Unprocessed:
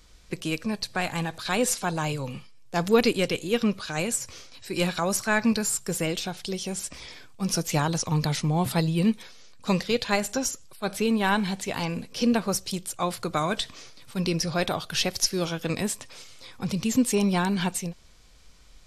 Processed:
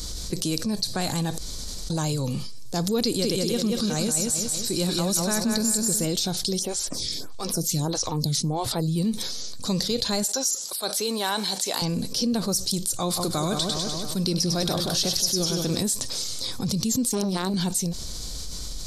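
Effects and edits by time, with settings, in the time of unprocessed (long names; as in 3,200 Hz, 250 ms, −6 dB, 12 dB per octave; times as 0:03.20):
0:01.38–0:01.90: fill with room tone
0:03.02–0:06.05: repeating echo 185 ms, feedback 41%, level −3.5 dB
0:06.59–0:08.96: phaser with staggered stages 1.6 Hz
0:10.24–0:11.82: high-pass filter 540 Hz
0:12.97–0:15.83: echo with a time of its own for lows and highs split 1,400 Hz, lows 171 ms, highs 100 ms, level −6.5 dB
0:17.07–0:17.54: saturating transformer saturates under 740 Hz
whole clip: drawn EQ curve 290 Hz 0 dB, 2,600 Hz −13 dB, 4,100 Hz +5 dB; envelope flattener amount 70%; level −6.5 dB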